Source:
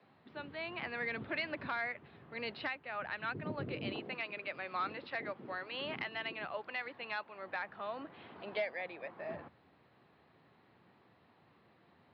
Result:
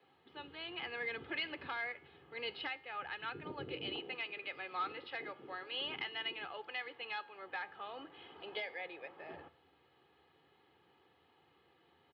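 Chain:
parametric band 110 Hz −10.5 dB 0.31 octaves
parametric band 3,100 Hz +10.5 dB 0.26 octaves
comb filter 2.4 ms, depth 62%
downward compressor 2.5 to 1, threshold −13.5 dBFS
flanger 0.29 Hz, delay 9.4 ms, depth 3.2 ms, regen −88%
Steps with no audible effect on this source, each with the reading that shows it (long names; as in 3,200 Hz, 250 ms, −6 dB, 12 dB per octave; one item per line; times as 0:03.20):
downward compressor, threshold −13.5 dBFS: peak of its input −22.5 dBFS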